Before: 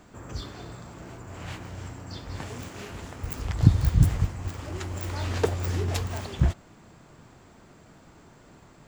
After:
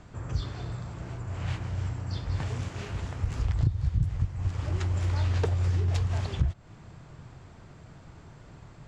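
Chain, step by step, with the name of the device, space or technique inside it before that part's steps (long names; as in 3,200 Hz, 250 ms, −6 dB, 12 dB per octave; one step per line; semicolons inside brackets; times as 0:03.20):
jukebox (low-pass filter 6,600 Hz 12 dB per octave; low shelf with overshoot 170 Hz +7 dB, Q 1.5; downward compressor 6 to 1, threshold −23 dBFS, peak gain reduction 19.5 dB)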